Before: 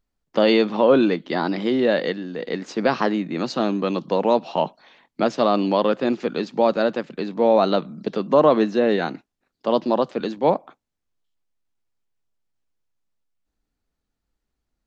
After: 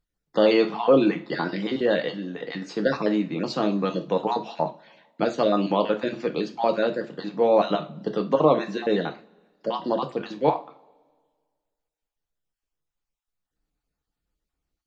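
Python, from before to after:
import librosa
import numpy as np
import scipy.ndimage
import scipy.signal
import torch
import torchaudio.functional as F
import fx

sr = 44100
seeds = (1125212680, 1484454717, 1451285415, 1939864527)

y = fx.spec_dropout(x, sr, seeds[0], share_pct=27)
y = fx.rev_double_slope(y, sr, seeds[1], early_s=0.3, late_s=1.7, knee_db=-26, drr_db=4.5)
y = y * 10.0 ** (-3.0 / 20.0)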